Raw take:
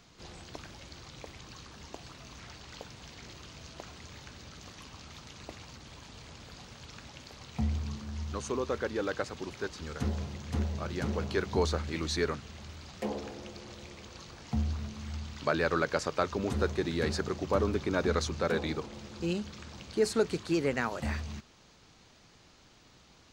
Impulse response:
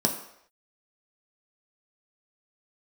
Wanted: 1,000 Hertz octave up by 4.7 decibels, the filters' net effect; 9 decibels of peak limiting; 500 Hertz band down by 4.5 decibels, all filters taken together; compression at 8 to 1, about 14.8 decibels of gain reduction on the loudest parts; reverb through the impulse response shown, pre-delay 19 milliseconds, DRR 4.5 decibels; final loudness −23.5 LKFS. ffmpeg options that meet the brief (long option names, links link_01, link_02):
-filter_complex "[0:a]equalizer=frequency=500:width_type=o:gain=-7.5,equalizer=frequency=1000:width_type=o:gain=8,acompressor=threshold=-38dB:ratio=8,alimiter=level_in=7.5dB:limit=-24dB:level=0:latency=1,volume=-7.5dB,asplit=2[link_01][link_02];[1:a]atrim=start_sample=2205,adelay=19[link_03];[link_02][link_03]afir=irnorm=-1:irlink=0,volume=-14.5dB[link_04];[link_01][link_04]amix=inputs=2:normalize=0,volume=18dB"